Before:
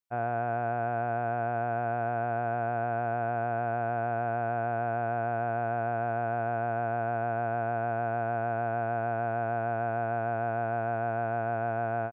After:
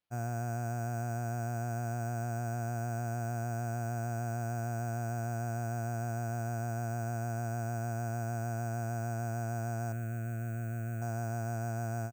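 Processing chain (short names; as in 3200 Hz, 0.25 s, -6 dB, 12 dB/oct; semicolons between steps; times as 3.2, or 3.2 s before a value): graphic EQ 125/500/1000/2000 Hz +4/-10/-10/-5 dB; sample-and-hold 6×; 9.92–11.02 fixed phaser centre 2200 Hz, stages 4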